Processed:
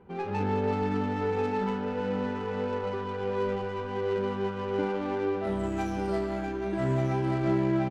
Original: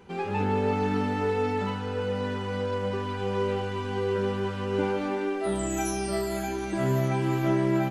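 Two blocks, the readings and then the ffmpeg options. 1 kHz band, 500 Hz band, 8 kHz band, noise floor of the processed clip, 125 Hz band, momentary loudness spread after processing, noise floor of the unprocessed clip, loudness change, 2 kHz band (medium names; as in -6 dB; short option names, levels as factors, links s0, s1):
-1.5 dB, -1.5 dB, under -15 dB, -35 dBFS, -2.5 dB, 5 LU, -33 dBFS, -2.0 dB, -3.5 dB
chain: -af "aecho=1:1:1189:0.422,adynamicsmooth=sensitivity=3.5:basefreq=1500,volume=0.794"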